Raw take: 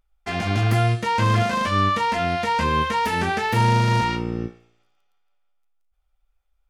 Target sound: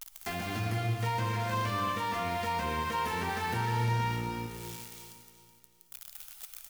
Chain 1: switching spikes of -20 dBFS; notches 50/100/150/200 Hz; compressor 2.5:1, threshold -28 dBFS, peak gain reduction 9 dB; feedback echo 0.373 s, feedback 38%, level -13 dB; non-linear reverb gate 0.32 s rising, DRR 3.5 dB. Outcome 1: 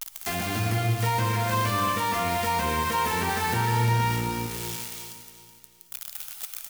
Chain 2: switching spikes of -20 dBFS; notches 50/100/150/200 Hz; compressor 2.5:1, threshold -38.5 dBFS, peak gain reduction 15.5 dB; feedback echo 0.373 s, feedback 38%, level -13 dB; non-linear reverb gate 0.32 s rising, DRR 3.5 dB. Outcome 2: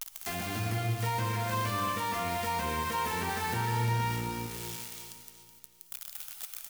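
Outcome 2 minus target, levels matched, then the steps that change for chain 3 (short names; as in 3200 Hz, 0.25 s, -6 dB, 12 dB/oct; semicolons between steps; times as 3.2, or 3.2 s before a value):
switching spikes: distortion +9 dB
change: switching spikes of -29 dBFS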